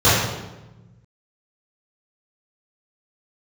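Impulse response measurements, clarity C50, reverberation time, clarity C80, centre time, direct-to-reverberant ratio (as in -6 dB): -0.5 dB, 1.1 s, 2.5 dB, 79 ms, -15.5 dB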